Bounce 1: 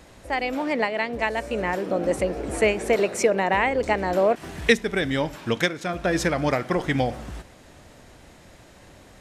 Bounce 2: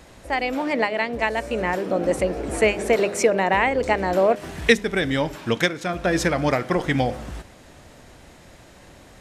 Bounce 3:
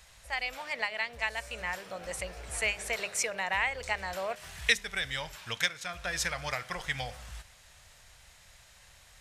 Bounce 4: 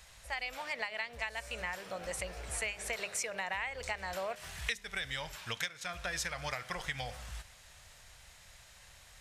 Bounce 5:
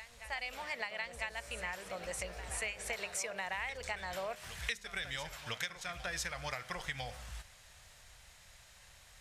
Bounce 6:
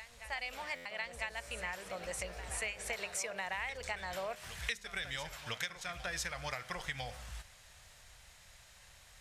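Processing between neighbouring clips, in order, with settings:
de-hum 102.1 Hz, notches 6; trim +2 dB
amplifier tone stack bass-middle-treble 10-0-10; trim -2 dB
compression 4:1, threshold -34 dBFS, peak gain reduction 12.5 dB
reverse echo 1000 ms -12 dB; trim -2 dB
buffer glitch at 0.75 s, samples 512, times 8

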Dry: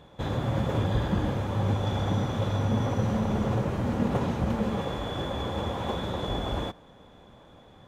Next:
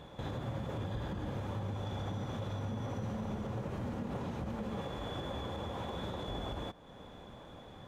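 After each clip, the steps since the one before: compression 2:1, threshold -45 dBFS, peak gain reduction 13 dB; peak limiter -31.5 dBFS, peak gain reduction 6 dB; trim +1.5 dB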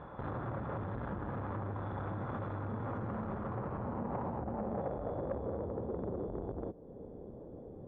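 low-pass sweep 1.3 kHz -> 430 Hz, 3.42–5.83 s; transformer saturation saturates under 420 Hz; trim +1.5 dB

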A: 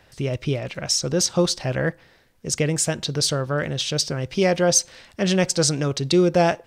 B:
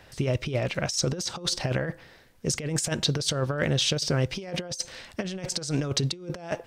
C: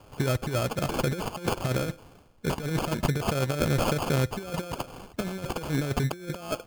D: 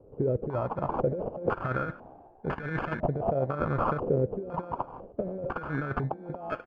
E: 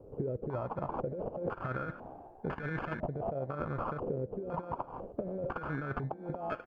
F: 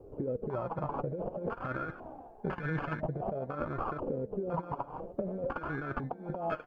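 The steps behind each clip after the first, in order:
compressor with a negative ratio -25 dBFS, ratio -0.5; trim -2 dB
sample-and-hold 23×
frequency-shifting echo 147 ms, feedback 62%, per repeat +60 Hz, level -22.5 dB; step-sequenced low-pass 2 Hz 460–1700 Hz; trim -5 dB
compression, threshold -35 dBFS, peak gain reduction 13.5 dB; trim +2 dB
flange 0.52 Hz, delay 2.4 ms, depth 4.8 ms, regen +37%; trim +5 dB

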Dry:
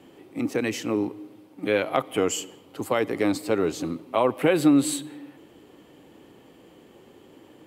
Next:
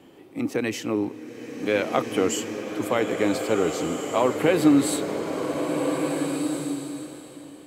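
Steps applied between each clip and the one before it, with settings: swelling reverb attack 1690 ms, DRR 3.5 dB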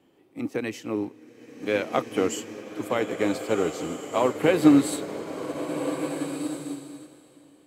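upward expansion 1.5:1, over -40 dBFS; trim +2 dB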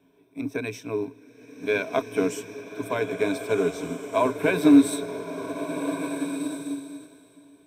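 rippled EQ curve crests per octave 1.6, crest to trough 15 dB; trim -2.5 dB

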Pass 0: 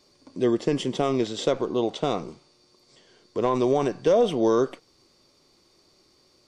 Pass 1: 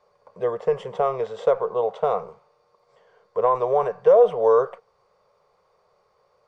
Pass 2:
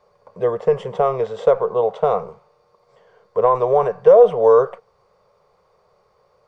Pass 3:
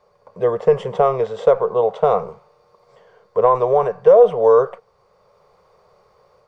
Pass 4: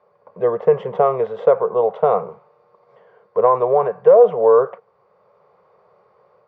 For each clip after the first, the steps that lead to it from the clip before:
FFT filter 200 Hz 0 dB, 290 Hz -29 dB, 450 Hz +14 dB, 640 Hz +12 dB, 1.1 kHz +14 dB, 4.3 kHz -10 dB; trim -7.5 dB
bass shelf 330 Hz +6 dB; trim +3 dB
level rider gain up to 4.5 dB
band-pass 140–2200 Hz

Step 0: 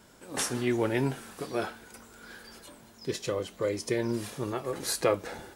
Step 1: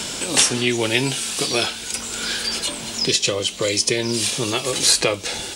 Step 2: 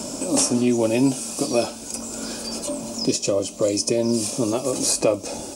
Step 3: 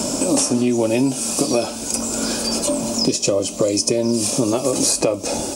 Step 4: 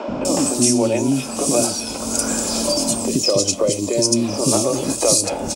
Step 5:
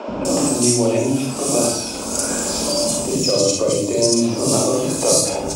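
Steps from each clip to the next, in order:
high-order bell 4.8 kHz +15 dB 2.3 oct; three bands compressed up and down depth 70%; trim +6.5 dB
high-order bell 2.5 kHz -14 dB; small resonant body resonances 270/580/2500 Hz, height 12 dB, ringing for 35 ms; trim -3.5 dB
compression, threshold -23 dBFS, peak gain reduction 9.5 dB; trim +8.5 dB
three bands offset in time mids, lows, highs 80/250 ms, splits 350/2700 Hz; trim +2 dB
reverberation RT60 0.50 s, pre-delay 36 ms, DRR -0.5 dB; trim -2.5 dB

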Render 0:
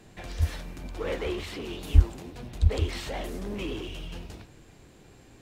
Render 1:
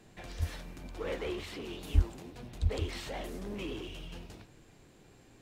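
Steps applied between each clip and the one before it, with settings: peaking EQ 62 Hz -7.5 dB 0.6 oct; trim -5 dB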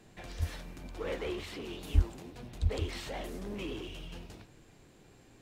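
no audible change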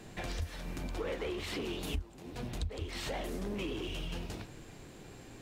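compression 8:1, threshold -42 dBFS, peak gain reduction 24 dB; trim +8 dB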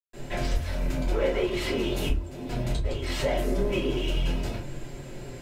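reverberation RT60 0.30 s, pre-delay 133 ms; trim +8 dB

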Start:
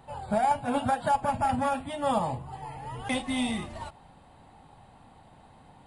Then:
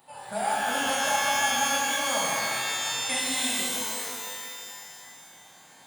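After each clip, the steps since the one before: high-pass 89 Hz; RIAA curve recording; pitch-shifted reverb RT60 2.2 s, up +12 st, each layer -2 dB, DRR -4 dB; trim -5.5 dB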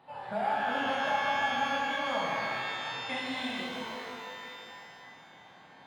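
in parallel at -1 dB: compression, threshold -37 dBFS, peak gain reduction 15 dB; on the sum: distance through air 320 m; trim -3 dB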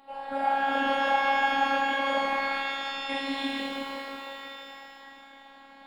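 band-stop 6.1 kHz, Q 5.6; robot voice 274 Hz; trim +5.5 dB

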